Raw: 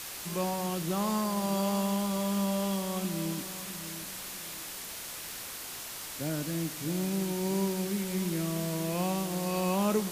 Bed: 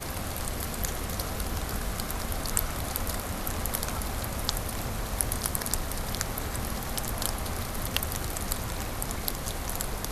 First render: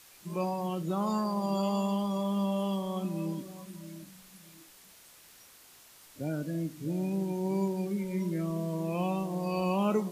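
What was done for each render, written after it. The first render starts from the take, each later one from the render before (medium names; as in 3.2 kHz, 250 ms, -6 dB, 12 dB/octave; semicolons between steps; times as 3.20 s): noise print and reduce 15 dB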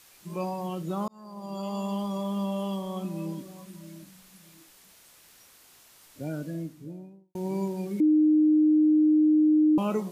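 1.08–1.99 s: fade in; 6.37–7.35 s: studio fade out; 8.00–9.78 s: bleep 307 Hz -17 dBFS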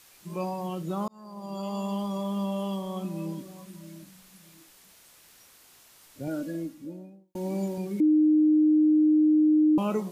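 6.27–7.78 s: comb 3.6 ms, depth 81%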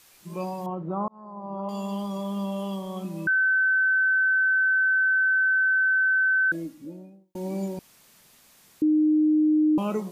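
0.66–1.69 s: resonant low-pass 1 kHz, resonance Q 1.9; 3.27–6.52 s: bleep 1.53 kHz -18.5 dBFS; 7.79–8.82 s: room tone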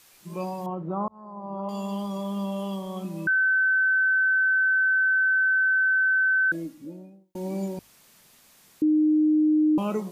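hum notches 50/100 Hz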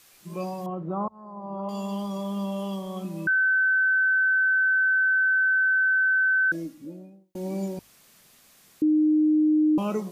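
band-stop 910 Hz, Q 14; dynamic bell 5.6 kHz, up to +7 dB, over -59 dBFS, Q 3.8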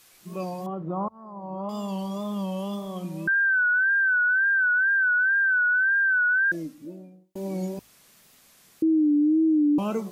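wow and flutter 79 cents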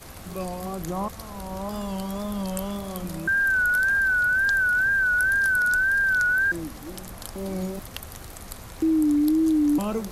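add bed -8 dB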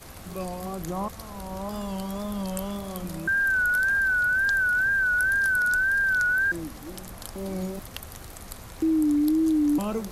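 trim -1.5 dB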